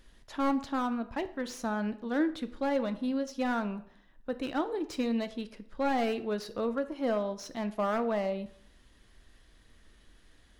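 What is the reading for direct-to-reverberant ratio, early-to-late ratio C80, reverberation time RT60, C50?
10.0 dB, 18.5 dB, 0.65 s, 15.0 dB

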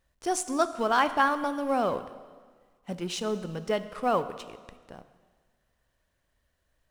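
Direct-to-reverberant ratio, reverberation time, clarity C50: 11.5 dB, 1.6 s, 13.0 dB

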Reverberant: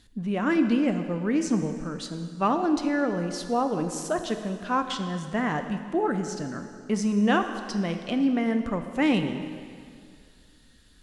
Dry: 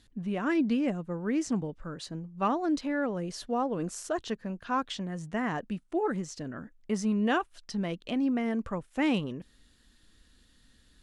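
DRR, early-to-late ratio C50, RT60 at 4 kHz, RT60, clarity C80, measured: 7.0 dB, 8.0 dB, 2.1 s, 2.2 s, 9.0 dB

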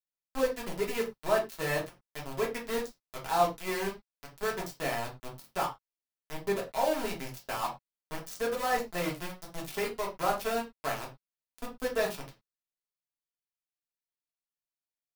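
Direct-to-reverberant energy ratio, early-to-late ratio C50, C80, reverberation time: -2.5 dB, 10.5 dB, 17.5 dB, not exponential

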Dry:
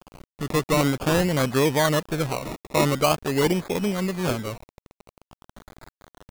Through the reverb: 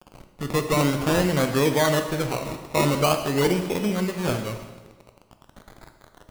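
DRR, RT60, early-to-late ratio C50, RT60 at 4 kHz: 5.5 dB, 1.3 s, 7.5 dB, 1.2 s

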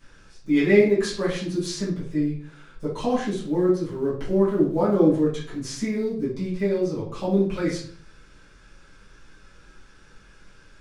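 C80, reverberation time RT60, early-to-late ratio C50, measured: 9.5 dB, 0.50 s, 4.0 dB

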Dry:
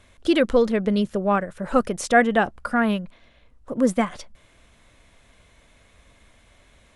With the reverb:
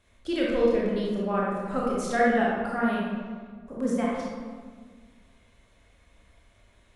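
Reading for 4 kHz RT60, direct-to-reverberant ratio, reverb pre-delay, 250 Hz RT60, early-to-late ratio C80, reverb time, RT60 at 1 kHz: 0.90 s, -5.5 dB, 20 ms, 2.0 s, 1.5 dB, 1.6 s, 1.5 s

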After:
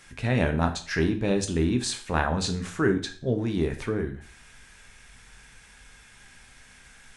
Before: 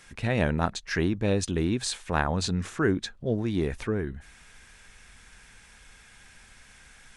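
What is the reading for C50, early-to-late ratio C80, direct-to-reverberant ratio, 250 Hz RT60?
12.0 dB, 16.5 dB, 6.0 dB, 0.40 s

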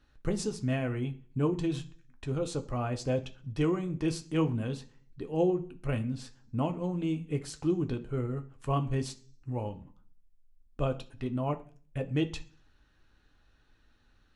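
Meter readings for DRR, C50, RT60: 5.0 dB, 16.5 dB, 0.40 s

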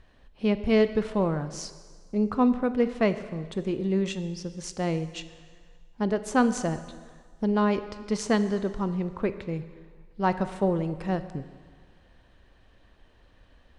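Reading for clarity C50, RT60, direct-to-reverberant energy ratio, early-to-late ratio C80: 12.5 dB, 1.7 s, 11.5 dB, 13.5 dB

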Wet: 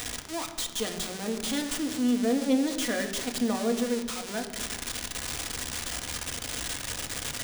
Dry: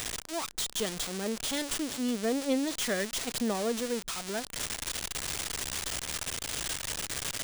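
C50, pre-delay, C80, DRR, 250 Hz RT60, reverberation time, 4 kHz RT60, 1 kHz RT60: 9.5 dB, 3 ms, 11.0 dB, 4.0 dB, 1.9 s, 1.5 s, 1.1 s, 1.4 s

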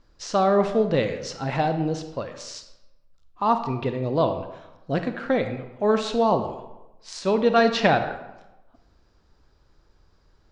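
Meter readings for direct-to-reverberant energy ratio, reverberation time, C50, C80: 7.5 dB, 0.95 s, 9.0 dB, 11.0 dB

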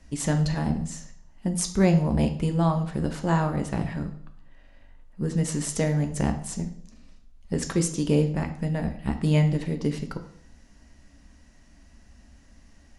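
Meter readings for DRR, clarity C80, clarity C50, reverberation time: 6.0 dB, 14.0 dB, 11.0 dB, 0.60 s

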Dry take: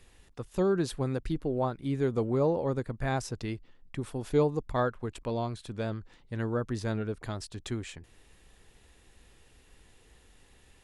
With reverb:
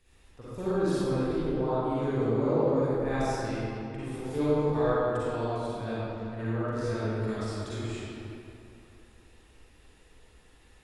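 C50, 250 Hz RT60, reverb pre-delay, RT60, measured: -9.5 dB, 2.7 s, 38 ms, 2.9 s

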